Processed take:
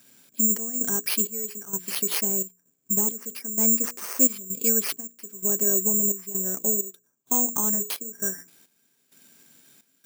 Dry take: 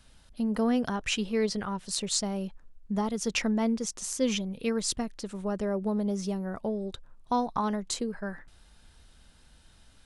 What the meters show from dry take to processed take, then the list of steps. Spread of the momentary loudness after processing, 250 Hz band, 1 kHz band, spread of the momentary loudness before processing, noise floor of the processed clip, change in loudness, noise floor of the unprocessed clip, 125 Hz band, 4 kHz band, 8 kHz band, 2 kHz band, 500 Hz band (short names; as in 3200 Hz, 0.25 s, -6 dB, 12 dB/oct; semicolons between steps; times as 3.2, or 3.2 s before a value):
11 LU, -3.0 dB, -7.0 dB, 9 LU, -69 dBFS, +7.5 dB, -58 dBFS, n/a, -2.5 dB, +13.0 dB, -1.5 dB, -2.0 dB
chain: bell 4900 Hz +5.5 dB 0.47 oct; notches 60/120/180/240/300/360/420/480 Hz; small resonant body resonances 270/390/1600/2300 Hz, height 12 dB, ringing for 35 ms; in parallel at 0 dB: compressor, threshold -30 dBFS, peak gain reduction 16.5 dB; on the sum: FFT band-pass 110–7000 Hz; careless resampling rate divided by 6×, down none, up zero stuff; step gate "xxxxx..xxxx....x" 130 bpm -12 dB; gain -10.5 dB